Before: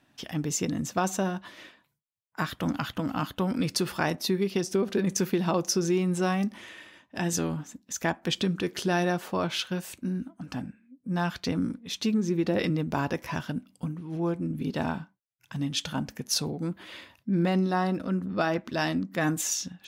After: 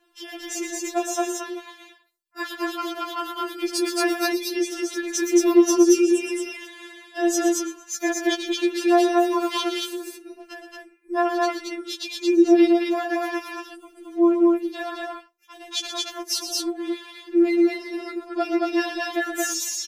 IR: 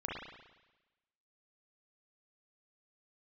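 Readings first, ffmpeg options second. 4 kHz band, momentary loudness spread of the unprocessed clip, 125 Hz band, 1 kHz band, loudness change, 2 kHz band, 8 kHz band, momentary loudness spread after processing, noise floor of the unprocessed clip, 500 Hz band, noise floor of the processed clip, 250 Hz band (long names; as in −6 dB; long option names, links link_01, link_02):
+4.5 dB, 11 LU, below −35 dB, +5.0 dB, +6.5 dB, +4.5 dB, +5.0 dB, 18 LU, −71 dBFS, +8.0 dB, −54 dBFS, +6.5 dB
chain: -af "aecho=1:1:119.5|224.5:0.355|0.891,afftfilt=real='re*4*eq(mod(b,16),0)':imag='im*4*eq(mod(b,16),0)':win_size=2048:overlap=0.75,volume=4.5dB"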